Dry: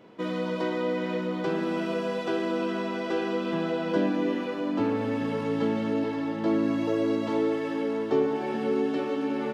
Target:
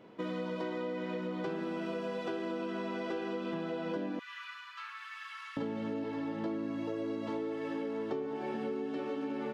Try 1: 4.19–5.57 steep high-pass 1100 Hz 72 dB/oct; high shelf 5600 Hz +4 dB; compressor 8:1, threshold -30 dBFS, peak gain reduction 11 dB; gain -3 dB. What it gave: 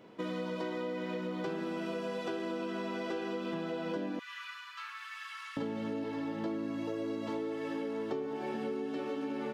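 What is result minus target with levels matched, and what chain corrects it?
8000 Hz band +5.0 dB
4.19–5.57 steep high-pass 1100 Hz 72 dB/oct; high shelf 5600 Hz -4.5 dB; compressor 8:1, threshold -30 dBFS, peak gain reduction 11 dB; gain -3 dB

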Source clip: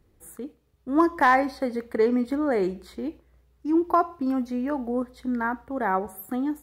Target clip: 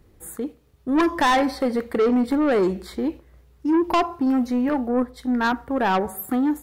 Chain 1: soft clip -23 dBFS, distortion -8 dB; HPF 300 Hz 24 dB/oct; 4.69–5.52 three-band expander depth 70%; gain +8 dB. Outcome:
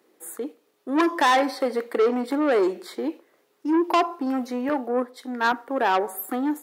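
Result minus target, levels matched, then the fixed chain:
250 Hz band -2.5 dB
soft clip -23 dBFS, distortion -8 dB; 4.69–5.52 three-band expander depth 70%; gain +8 dB

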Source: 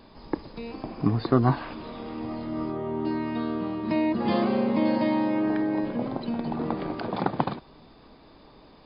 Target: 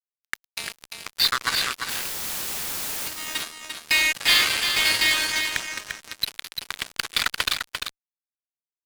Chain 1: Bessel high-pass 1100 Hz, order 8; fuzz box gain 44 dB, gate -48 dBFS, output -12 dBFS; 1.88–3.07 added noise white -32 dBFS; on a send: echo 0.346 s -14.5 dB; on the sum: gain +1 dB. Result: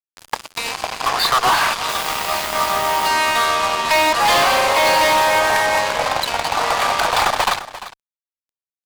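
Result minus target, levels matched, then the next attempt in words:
1000 Hz band +13.0 dB; echo-to-direct -8.5 dB
Bessel high-pass 2800 Hz, order 8; fuzz box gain 44 dB, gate -48 dBFS, output -12 dBFS; 1.88–3.07 added noise white -32 dBFS; on a send: echo 0.346 s -6 dB; on the sum: gain +1 dB

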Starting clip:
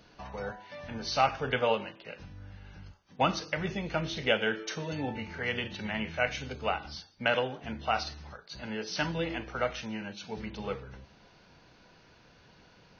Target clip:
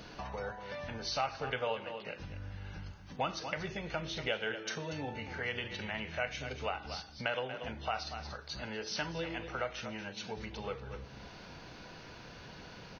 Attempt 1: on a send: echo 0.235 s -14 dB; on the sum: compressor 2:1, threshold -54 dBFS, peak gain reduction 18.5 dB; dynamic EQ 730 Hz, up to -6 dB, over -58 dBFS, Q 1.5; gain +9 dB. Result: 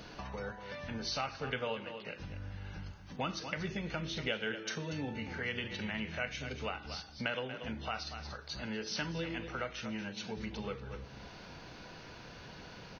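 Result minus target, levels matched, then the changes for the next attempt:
250 Hz band +4.5 dB
change: dynamic EQ 220 Hz, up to -6 dB, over -58 dBFS, Q 1.5

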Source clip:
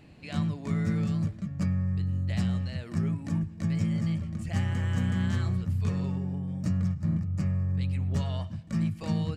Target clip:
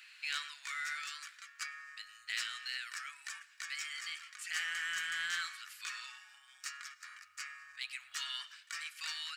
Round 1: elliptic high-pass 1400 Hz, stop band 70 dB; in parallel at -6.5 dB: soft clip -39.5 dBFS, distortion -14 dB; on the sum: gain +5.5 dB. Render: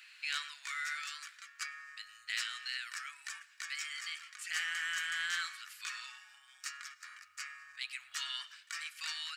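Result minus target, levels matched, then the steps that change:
soft clip: distortion -7 dB
change: soft clip -47.5 dBFS, distortion -7 dB

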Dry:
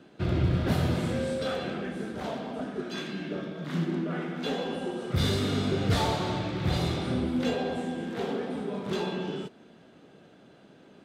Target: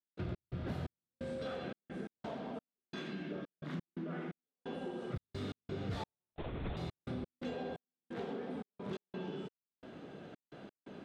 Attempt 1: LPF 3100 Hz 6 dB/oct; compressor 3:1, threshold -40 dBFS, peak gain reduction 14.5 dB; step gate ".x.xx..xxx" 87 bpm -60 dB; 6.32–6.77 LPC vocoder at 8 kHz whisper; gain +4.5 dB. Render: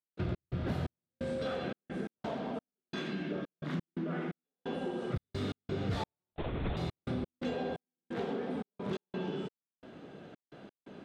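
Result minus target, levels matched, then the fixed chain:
compressor: peak gain reduction -5.5 dB
LPF 3100 Hz 6 dB/oct; compressor 3:1, threshold -48 dBFS, peak gain reduction 19.5 dB; step gate ".x.xx..xxx" 87 bpm -60 dB; 6.32–6.77 LPC vocoder at 8 kHz whisper; gain +4.5 dB

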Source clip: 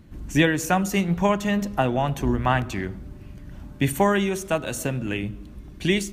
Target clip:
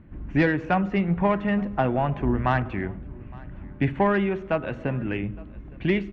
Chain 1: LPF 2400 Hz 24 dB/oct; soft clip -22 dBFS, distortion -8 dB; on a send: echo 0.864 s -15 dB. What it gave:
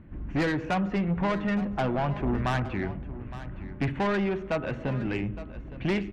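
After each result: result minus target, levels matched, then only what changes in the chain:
soft clip: distortion +12 dB; echo-to-direct +9 dB
change: soft clip -10.5 dBFS, distortion -20 dB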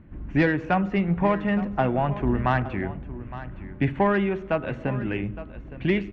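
echo-to-direct +9 dB
change: echo 0.864 s -24 dB

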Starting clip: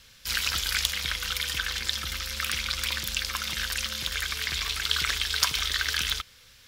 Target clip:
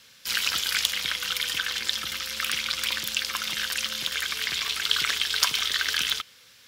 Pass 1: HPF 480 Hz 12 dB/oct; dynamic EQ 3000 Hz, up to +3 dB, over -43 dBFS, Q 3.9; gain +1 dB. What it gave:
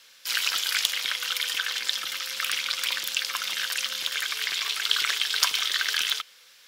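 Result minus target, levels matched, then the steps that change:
125 Hz band -16.5 dB
change: HPF 170 Hz 12 dB/oct

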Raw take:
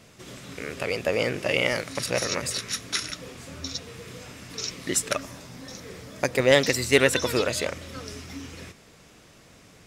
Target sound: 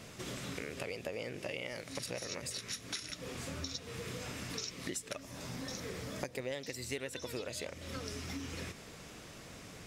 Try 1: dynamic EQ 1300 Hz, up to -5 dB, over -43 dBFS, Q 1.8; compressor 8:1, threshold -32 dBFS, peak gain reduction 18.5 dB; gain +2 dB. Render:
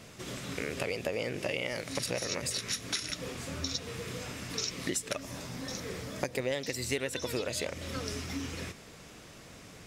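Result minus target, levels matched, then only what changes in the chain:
compressor: peak gain reduction -7 dB
change: compressor 8:1, threshold -40 dBFS, peak gain reduction 25.5 dB

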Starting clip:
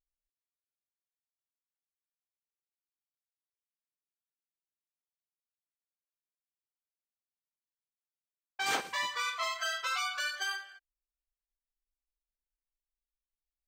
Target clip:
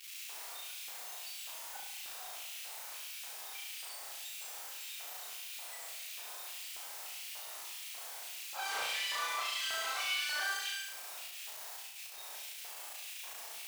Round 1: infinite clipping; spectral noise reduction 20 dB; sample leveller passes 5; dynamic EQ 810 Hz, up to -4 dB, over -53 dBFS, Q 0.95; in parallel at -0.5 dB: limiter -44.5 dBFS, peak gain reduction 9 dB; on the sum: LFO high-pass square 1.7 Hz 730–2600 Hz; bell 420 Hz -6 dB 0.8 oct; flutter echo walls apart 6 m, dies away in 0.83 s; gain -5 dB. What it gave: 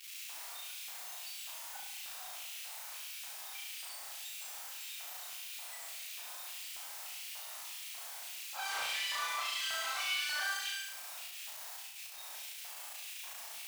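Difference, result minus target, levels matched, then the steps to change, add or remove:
500 Hz band -3.0 dB
change: bell 420 Hz +3 dB 0.8 oct

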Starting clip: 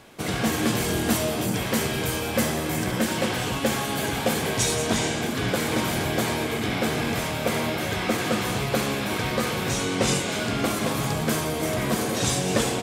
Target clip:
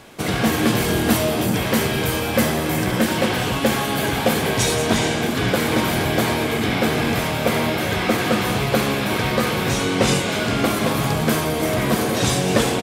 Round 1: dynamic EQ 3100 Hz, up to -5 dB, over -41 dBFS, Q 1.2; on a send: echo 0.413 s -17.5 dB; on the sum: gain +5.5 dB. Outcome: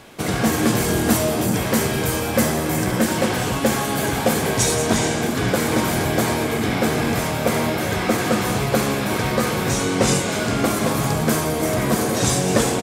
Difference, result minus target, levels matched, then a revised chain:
8000 Hz band +3.5 dB
dynamic EQ 7300 Hz, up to -5 dB, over -41 dBFS, Q 1.2; on a send: echo 0.413 s -17.5 dB; on the sum: gain +5.5 dB

